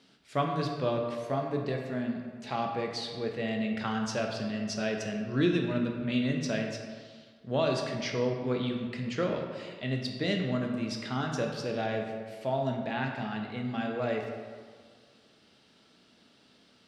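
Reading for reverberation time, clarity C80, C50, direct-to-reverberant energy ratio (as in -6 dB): 1.8 s, 5.5 dB, 4.0 dB, 2.0 dB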